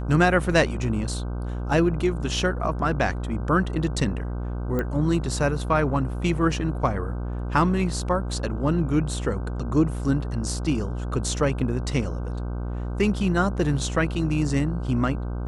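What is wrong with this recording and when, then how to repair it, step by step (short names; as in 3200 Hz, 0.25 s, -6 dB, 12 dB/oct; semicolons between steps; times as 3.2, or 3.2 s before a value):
buzz 60 Hz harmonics 26 -29 dBFS
4.79 pop -15 dBFS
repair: de-click; de-hum 60 Hz, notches 26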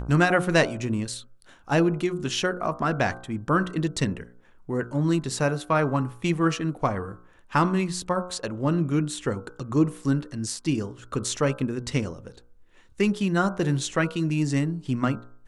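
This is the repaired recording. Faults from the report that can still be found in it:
none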